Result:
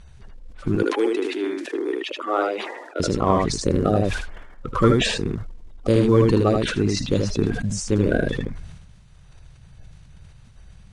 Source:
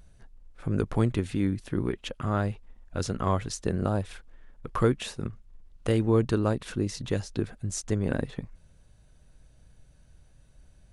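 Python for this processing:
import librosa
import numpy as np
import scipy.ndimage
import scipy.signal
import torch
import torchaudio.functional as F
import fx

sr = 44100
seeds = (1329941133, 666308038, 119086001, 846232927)

y = fx.spec_quant(x, sr, step_db=30)
y = fx.steep_highpass(y, sr, hz=310.0, slope=48, at=(0.75, 3.0))
y = fx.quant_float(y, sr, bits=4)
y = fx.air_absorb(y, sr, metres=66.0)
y = y + 10.0 ** (-5.0 / 20.0) * np.pad(y, (int(78 * sr / 1000.0), 0))[:len(y)]
y = fx.sustainer(y, sr, db_per_s=46.0)
y = F.gain(torch.from_numpy(y), 6.5).numpy()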